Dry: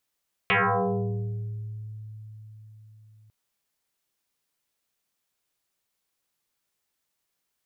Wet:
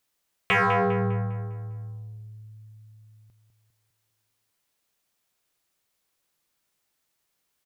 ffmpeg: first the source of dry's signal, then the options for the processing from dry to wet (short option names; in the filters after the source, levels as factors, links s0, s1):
-f lavfi -i "aevalsrc='0.126*pow(10,-3*t/4.8)*sin(2*PI*108*t+9.7*pow(10,-3*t/1.66)*sin(2*PI*2.76*108*t))':d=2.8:s=44100"
-filter_complex "[0:a]asplit=2[s0][s1];[s1]asoftclip=type=tanh:threshold=0.0299,volume=0.447[s2];[s0][s2]amix=inputs=2:normalize=0,asplit=2[s3][s4];[s4]adelay=201,lowpass=f=2900:p=1,volume=0.398,asplit=2[s5][s6];[s6]adelay=201,lowpass=f=2900:p=1,volume=0.5,asplit=2[s7][s8];[s8]adelay=201,lowpass=f=2900:p=1,volume=0.5,asplit=2[s9][s10];[s10]adelay=201,lowpass=f=2900:p=1,volume=0.5,asplit=2[s11][s12];[s12]adelay=201,lowpass=f=2900:p=1,volume=0.5,asplit=2[s13][s14];[s14]adelay=201,lowpass=f=2900:p=1,volume=0.5[s15];[s3][s5][s7][s9][s11][s13][s15]amix=inputs=7:normalize=0"